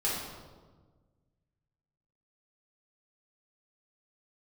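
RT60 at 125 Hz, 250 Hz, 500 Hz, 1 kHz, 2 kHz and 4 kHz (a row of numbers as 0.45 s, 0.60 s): 2.2 s, 1.8 s, 1.5 s, 1.3 s, 0.90 s, 0.90 s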